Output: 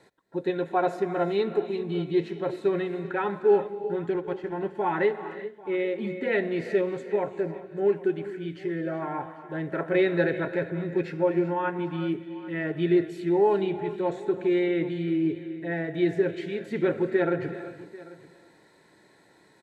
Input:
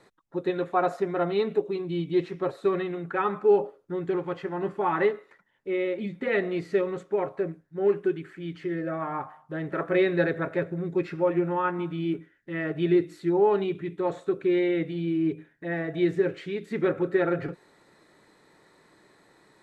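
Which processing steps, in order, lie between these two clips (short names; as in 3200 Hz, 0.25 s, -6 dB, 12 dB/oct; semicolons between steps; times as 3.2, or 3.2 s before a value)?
HPF 44 Hz; 4.1–4.75 transient shaper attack -2 dB, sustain -8 dB; Butterworth band-stop 1200 Hz, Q 5.3; echo 0.791 s -20 dB; non-linear reverb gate 0.42 s rising, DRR 11 dB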